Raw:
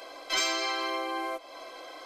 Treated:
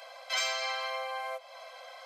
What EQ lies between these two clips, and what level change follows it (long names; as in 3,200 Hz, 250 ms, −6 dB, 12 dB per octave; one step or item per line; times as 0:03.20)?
Chebyshev high-pass with heavy ripple 510 Hz, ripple 3 dB
−1.5 dB